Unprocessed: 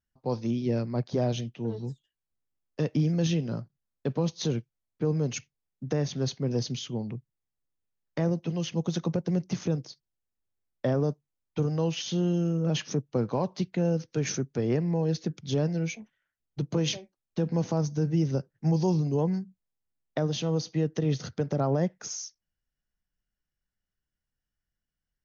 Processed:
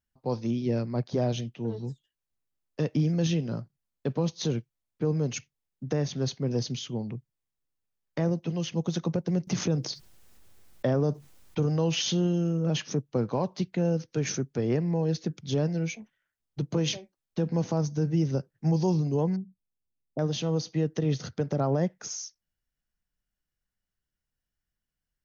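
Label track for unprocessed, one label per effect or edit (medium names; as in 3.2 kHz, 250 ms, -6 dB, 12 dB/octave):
9.470000	12.270000	level flattener amount 50%
19.360000	20.190000	Gaussian low-pass sigma 14 samples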